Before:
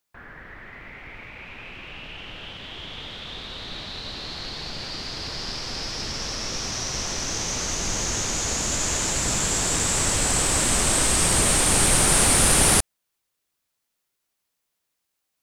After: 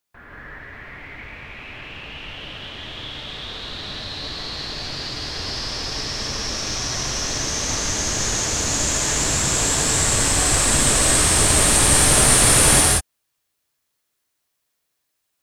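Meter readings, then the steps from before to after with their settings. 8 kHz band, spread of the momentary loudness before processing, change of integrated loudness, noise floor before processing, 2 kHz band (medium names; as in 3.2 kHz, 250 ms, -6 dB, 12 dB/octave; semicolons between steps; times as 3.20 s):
+4.0 dB, 21 LU, +4.0 dB, -79 dBFS, +4.0 dB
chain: gated-style reverb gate 210 ms rising, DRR -3 dB; trim -1 dB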